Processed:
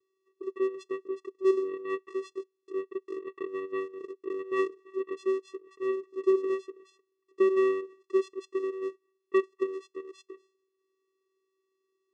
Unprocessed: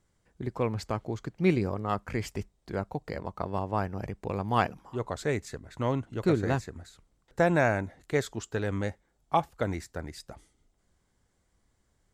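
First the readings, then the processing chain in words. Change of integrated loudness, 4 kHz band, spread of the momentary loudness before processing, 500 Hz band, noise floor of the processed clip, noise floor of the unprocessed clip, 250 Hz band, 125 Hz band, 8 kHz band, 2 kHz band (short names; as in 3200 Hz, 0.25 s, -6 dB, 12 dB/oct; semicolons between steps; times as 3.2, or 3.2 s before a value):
-0.5 dB, n/a, 13 LU, +3.0 dB, -81 dBFS, -73 dBFS, -2.5 dB, under -35 dB, under -10 dB, -8.0 dB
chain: vocoder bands 4, square 382 Hz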